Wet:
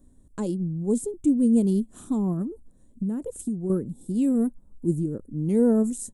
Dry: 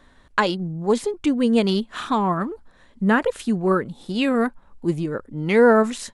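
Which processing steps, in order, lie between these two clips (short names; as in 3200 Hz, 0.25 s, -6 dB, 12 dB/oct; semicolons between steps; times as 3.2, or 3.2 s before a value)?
EQ curve 290 Hz 0 dB, 1100 Hz -24 dB, 1800 Hz -30 dB, 2800 Hz -27 dB, 4600 Hz -22 dB, 8100 Hz +3 dB; 2.41–3.7 compressor 5:1, threshold -26 dBFS, peak gain reduction 9.5 dB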